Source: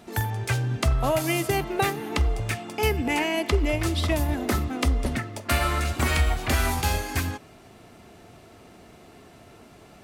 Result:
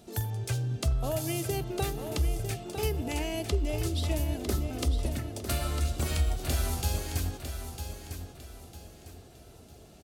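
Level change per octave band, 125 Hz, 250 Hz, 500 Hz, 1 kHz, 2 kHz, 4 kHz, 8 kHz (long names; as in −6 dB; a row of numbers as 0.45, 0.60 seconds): −4.0, −7.0, −6.5, −11.5, −13.5, −6.5, −3.5 decibels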